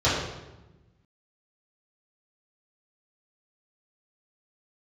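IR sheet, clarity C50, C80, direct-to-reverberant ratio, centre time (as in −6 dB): 1.0 dB, 3.5 dB, −11.5 dB, 68 ms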